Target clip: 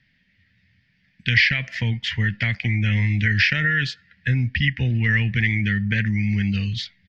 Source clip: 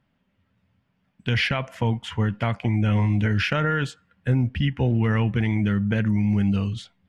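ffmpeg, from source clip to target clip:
-filter_complex "[0:a]acrossover=split=460[s0][s1];[s1]acompressor=threshold=0.0631:ratio=2.5[s2];[s0][s2]amix=inputs=2:normalize=0,firequalizer=gain_entry='entry(130,0);entry(350,-10);entry(830,-15);entry(1200,-16);entry(1800,14);entry(2900,5);entry(4800,12);entry(8700,-17)':delay=0.05:min_phase=1,asplit=2[s3][s4];[s4]acompressor=threshold=0.0282:ratio=6,volume=1[s5];[s3][s5]amix=inputs=2:normalize=0,volume=0.891"

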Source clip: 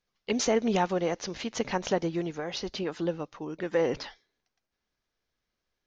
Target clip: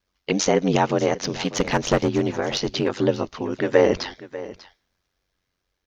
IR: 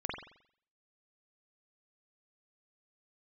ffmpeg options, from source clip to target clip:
-filter_complex "[0:a]asplit=3[s0][s1][s2];[s0]afade=t=out:st=1.2:d=0.02[s3];[s1]aeval=exprs='clip(val(0),-1,0.0501)':c=same,afade=t=in:st=1.2:d=0.02,afade=t=out:st=2.87:d=0.02[s4];[s2]afade=t=in:st=2.87:d=0.02[s5];[s3][s4][s5]amix=inputs=3:normalize=0,aeval=exprs='val(0)*sin(2*PI*46*n/s)':c=same,dynaudnorm=f=330:g=7:m=1.58,asplit=2[s6][s7];[s7]aecho=0:1:593:0.15[s8];[s6][s8]amix=inputs=2:normalize=0,volume=2.66"

